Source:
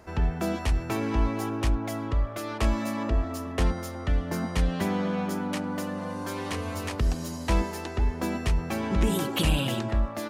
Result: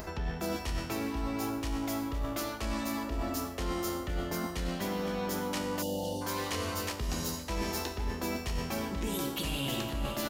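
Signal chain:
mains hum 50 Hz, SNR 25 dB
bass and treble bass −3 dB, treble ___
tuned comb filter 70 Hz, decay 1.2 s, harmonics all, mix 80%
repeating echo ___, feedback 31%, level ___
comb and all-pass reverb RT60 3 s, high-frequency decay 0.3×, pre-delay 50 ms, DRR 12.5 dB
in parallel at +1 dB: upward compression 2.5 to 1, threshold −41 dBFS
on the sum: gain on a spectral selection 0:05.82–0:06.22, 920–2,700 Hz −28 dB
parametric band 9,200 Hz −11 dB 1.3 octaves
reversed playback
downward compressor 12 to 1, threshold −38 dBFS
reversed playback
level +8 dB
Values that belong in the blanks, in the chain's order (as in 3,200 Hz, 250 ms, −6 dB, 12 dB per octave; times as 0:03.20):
+14 dB, 512 ms, −15.5 dB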